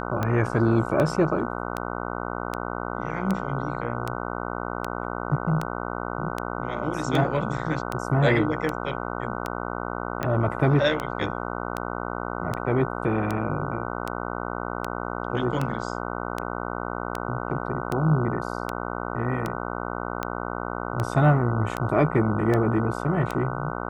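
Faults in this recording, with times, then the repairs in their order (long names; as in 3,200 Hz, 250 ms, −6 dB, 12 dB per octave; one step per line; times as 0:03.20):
mains buzz 60 Hz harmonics 25 −31 dBFS
scratch tick 78 rpm −13 dBFS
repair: click removal
hum removal 60 Hz, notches 25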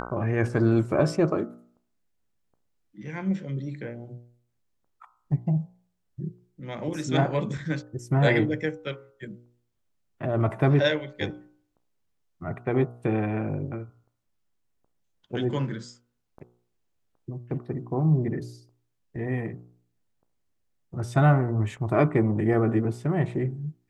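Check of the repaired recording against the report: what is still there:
none of them is left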